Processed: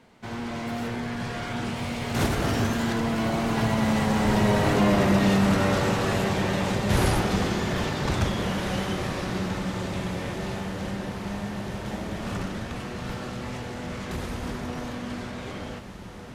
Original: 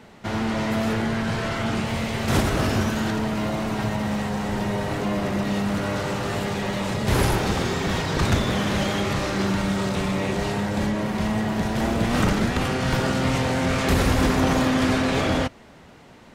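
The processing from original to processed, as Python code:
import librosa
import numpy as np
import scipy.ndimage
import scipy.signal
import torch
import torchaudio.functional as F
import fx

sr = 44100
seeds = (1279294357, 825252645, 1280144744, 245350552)

y = fx.doppler_pass(x, sr, speed_mps=21, closest_m=24.0, pass_at_s=4.83)
y = fx.echo_diffused(y, sr, ms=1792, feedback_pct=65, wet_db=-11.5)
y = y * 10.0 ** (4.5 / 20.0)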